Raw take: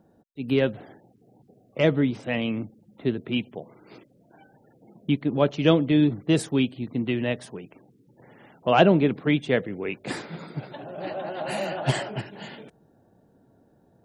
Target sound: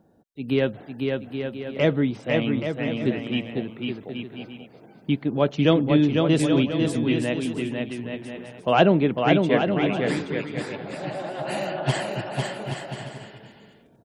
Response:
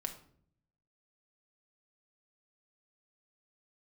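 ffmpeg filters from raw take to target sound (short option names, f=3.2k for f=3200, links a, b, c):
-af "aecho=1:1:500|825|1036|1174|1263:0.631|0.398|0.251|0.158|0.1"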